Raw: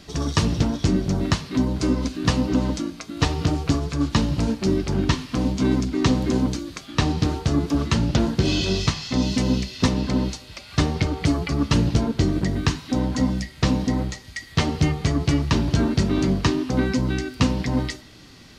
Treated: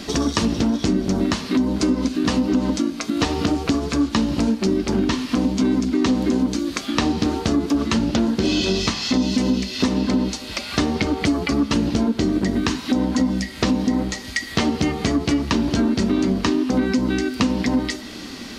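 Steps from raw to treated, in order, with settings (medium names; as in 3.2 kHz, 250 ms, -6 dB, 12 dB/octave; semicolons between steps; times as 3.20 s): resonant low shelf 180 Hz -6 dB, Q 3; in parallel at +2 dB: peak limiter -13 dBFS, peak gain reduction 7.5 dB; on the sum: compression 3:1, threshold -25 dBFS, peak gain reduction 12.5 dB; trim +5 dB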